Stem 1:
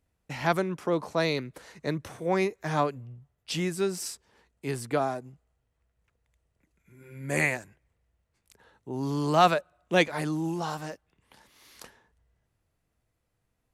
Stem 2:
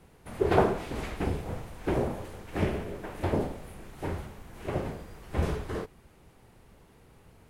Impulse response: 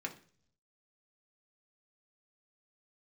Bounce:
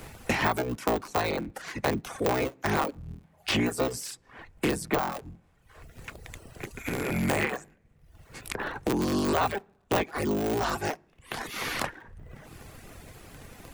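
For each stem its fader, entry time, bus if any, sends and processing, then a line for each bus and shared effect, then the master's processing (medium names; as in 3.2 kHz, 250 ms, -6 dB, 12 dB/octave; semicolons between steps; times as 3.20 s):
+1.5 dB, 0.00 s, send -8.5 dB, cycle switcher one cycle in 3, inverted; de-esser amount 70%
-18.5 dB, 0.00 s, send -22 dB, high-pass 640 Hz 24 dB/octave; auto duck -19 dB, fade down 0.20 s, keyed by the first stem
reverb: on, RT60 0.50 s, pre-delay 3 ms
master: reverb removal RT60 0.63 s; three bands compressed up and down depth 100%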